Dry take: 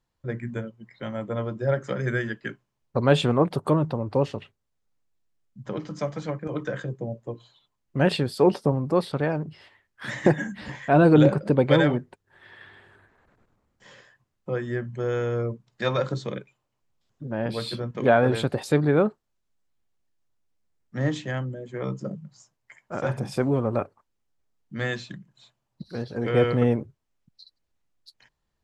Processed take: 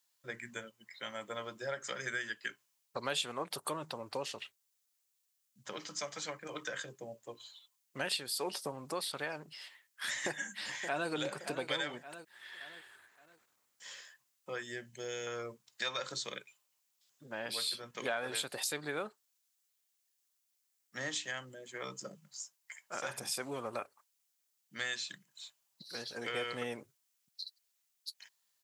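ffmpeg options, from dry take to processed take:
ffmpeg -i in.wav -filter_complex "[0:a]asplit=2[link_01][link_02];[link_02]afade=type=in:start_time=10.26:duration=0.01,afade=type=out:start_time=11.1:duration=0.01,aecho=0:1:570|1140|1710|2280:0.199526|0.0798105|0.0319242|0.0127697[link_03];[link_01][link_03]amix=inputs=2:normalize=0,asettb=1/sr,asplit=3[link_04][link_05][link_06];[link_04]atrim=end=14.634[link_07];[link_05]atrim=start=14.63:end=15.27,asetpts=PTS-STARTPTS,afade=type=in:duration=0.004:curve=qsin,afade=type=out:start_time=0.636:duration=0.004:curve=qsin,equalizer=frequency=1200:width_type=o:width=0.75:gain=-15[link_08];[link_06]atrim=start=15.266[link_09];[link_07][link_08]acrossfade=duration=0.004:curve1=hsin:curve2=qsin[link_10];[link_10][link_09]acrossfade=duration=0.004:curve1=qsin:curve2=hsin,aderivative,acompressor=threshold=-47dB:ratio=2.5,volume=11dB" out.wav

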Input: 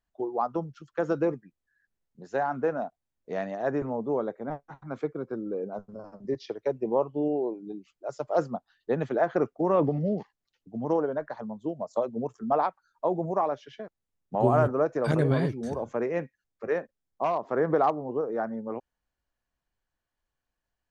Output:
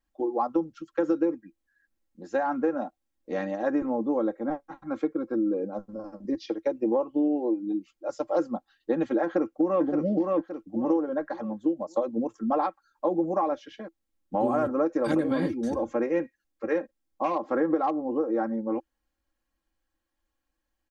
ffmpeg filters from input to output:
ffmpeg -i in.wav -filter_complex "[0:a]asplit=2[link_01][link_02];[link_02]afade=type=in:start_time=9.23:duration=0.01,afade=type=out:start_time=9.83:duration=0.01,aecho=0:1:570|1140|1710|2280:0.501187|0.150356|0.0451069|0.0135321[link_03];[link_01][link_03]amix=inputs=2:normalize=0,equalizer=frequency=330:width=6.4:gain=11,aecho=1:1:3.7:0.85,acompressor=threshold=-21dB:ratio=6" out.wav

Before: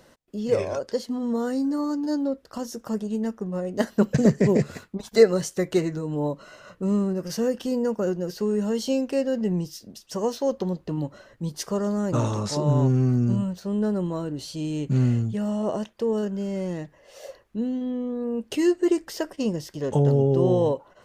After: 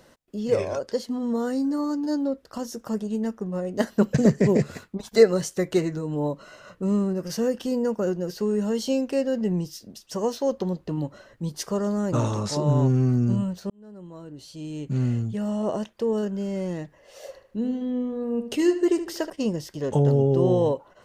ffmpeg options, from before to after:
ffmpeg -i in.wav -filter_complex "[0:a]asettb=1/sr,asplit=3[link_01][link_02][link_03];[link_01]atrim=end=17.264[link_04];[link_02]atrim=start=17.26:end=19.3,asetpts=PTS-STARTPTS,afade=type=in:duration=0.004:curve=qsin,afade=type=out:start_time=2.036:duration=0.004:curve=qsin,asplit=2[link_05][link_06];[link_06]adelay=76,lowpass=frequency=4300:poles=1,volume=-10.5dB,asplit=2[link_07][link_08];[link_08]adelay=76,lowpass=frequency=4300:poles=1,volume=0.41,asplit=2[link_09][link_10];[link_10]adelay=76,lowpass=frequency=4300:poles=1,volume=0.41,asplit=2[link_11][link_12];[link_12]adelay=76,lowpass=frequency=4300:poles=1,volume=0.41[link_13];[link_05][link_07][link_09][link_11][link_13]amix=inputs=5:normalize=0,atrim=end_sample=89964[link_14];[link_03]atrim=start=19.296[link_15];[link_04][link_14]acrossfade=duration=0.004:curve1=hsin:curve2=qsin[link_16];[link_16][link_15]acrossfade=duration=0.004:curve1=qsin:curve2=hsin,asplit=2[link_17][link_18];[link_17]atrim=end=13.7,asetpts=PTS-STARTPTS,afade=type=out:start_time=13.696:duration=0.004:curve=hsin[link_19];[link_18]atrim=start=13.7,asetpts=PTS-STARTPTS,afade=type=in:duration=1.94[link_20];[link_19][link_20]concat=n=2:v=0:a=1" out.wav

